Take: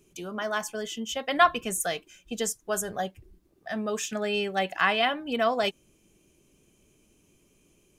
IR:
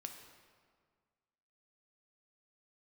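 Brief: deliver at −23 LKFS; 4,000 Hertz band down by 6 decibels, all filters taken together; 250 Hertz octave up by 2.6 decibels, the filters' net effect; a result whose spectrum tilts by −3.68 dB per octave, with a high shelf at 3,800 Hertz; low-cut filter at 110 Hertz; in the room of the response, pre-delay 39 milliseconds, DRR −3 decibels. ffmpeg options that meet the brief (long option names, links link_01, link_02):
-filter_complex "[0:a]highpass=110,equalizer=frequency=250:width_type=o:gain=3.5,highshelf=frequency=3800:gain=-3.5,equalizer=frequency=4000:width_type=o:gain=-7,asplit=2[link_01][link_02];[1:a]atrim=start_sample=2205,adelay=39[link_03];[link_02][link_03]afir=irnorm=-1:irlink=0,volume=6.5dB[link_04];[link_01][link_04]amix=inputs=2:normalize=0,volume=1.5dB"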